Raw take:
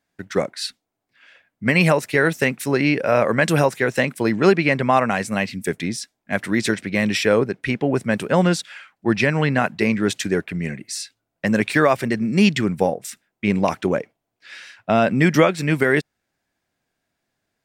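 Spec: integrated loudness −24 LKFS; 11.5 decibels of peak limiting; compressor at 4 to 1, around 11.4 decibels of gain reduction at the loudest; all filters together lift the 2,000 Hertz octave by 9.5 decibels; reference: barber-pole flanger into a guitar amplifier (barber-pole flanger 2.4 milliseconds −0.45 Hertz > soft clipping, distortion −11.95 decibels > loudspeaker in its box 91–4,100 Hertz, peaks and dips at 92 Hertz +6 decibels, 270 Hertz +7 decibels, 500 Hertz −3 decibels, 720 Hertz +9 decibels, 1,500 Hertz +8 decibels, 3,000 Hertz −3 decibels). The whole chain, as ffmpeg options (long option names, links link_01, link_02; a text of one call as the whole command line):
ffmpeg -i in.wav -filter_complex "[0:a]equalizer=frequency=2000:width_type=o:gain=7.5,acompressor=threshold=-23dB:ratio=4,alimiter=limit=-17.5dB:level=0:latency=1,asplit=2[link_01][link_02];[link_02]adelay=2.4,afreqshift=-0.45[link_03];[link_01][link_03]amix=inputs=2:normalize=1,asoftclip=threshold=-29.5dB,highpass=91,equalizer=frequency=92:width_type=q:width=4:gain=6,equalizer=frequency=270:width_type=q:width=4:gain=7,equalizer=frequency=500:width_type=q:width=4:gain=-3,equalizer=frequency=720:width_type=q:width=4:gain=9,equalizer=frequency=1500:width_type=q:width=4:gain=8,equalizer=frequency=3000:width_type=q:width=4:gain=-3,lowpass=frequency=4100:width=0.5412,lowpass=frequency=4100:width=1.3066,volume=10dB" out.wav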